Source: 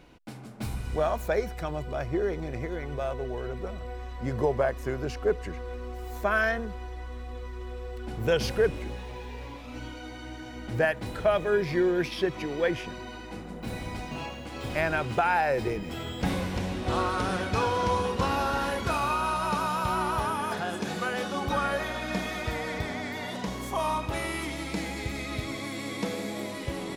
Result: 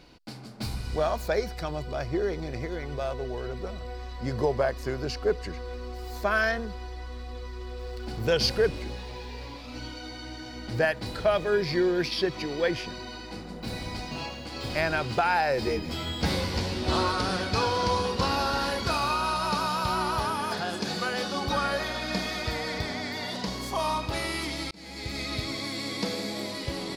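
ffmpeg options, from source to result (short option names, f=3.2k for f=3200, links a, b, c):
-filter_complex "[0:a]asettb=1/sr,asplit=3[a][b][c];[a]atrim=end=7.794[d];[b]atrim=start=7.79:end=8.22,asetpts=PTS-STARTPTS,afade=t=in:d=0.004:c=qsin,afade=t=out:st=0.426:d=0.004:c=qsin,aeval=exprs='val(0)+0.5*0.00316*sgn(val(0))':c=same[e];[c]atrim=start=8.216[f];[d][e]acrossfade=d=0.004:c1=hsin:c2=qsin[g];[g][f]acrossfade=d=0.004:c1=qsin:c2=hsin,asettb=1/sr,asplit=3[h][i][j];[h]atrim=end=15.614[k];[i]atrim=start=15.61:end=17.12,asetpts=PTS-STARTPTS,afade=t=in:d=0.004:c=qsin,afade=t=out:st=1.506:d=0.004:c=qsin,asplit=2[l][m];[m]adelay=13,volume=-2.5dB[n];[l][n]amix=inputs=2:normalize=0,atrim=end_sample=66591[o];[j]atrim=start=17.116[p];[k][o]acrossfade=d=0.004:c1=hsin:c2=qsin[q];[q][p]acrossfade=d=0.004:c1=qsin:c2=hsin,asplit=2[r][s];[r]atrim=end=24.71,asetpts=PTS-STARTPTS,afade=t=out:st=24.706:d=0.004:c=hsin[t];[s]atrim=start=24.71,asetpts=PTS-STARTPTS,afade=t=in:d=0.5[u];[t][u]concat=n=2:v=0:a=1,equalizer=f=4.6k:w=2.8:g=13.5"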